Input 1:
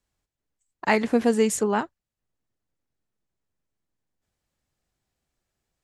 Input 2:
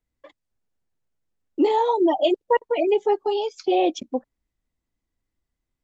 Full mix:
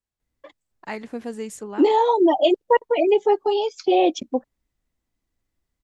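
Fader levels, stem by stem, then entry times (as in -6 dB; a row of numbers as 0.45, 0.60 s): -11.0, +2.5 dB; 0.00, 0.20 s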